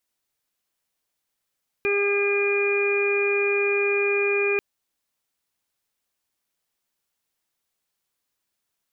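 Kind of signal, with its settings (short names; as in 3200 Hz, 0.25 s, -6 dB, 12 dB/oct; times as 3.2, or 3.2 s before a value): steady additive tone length 2.74 s, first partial 404 Hz, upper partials -18.5/-14/-13/-18/-2 dB, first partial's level -21.5 dB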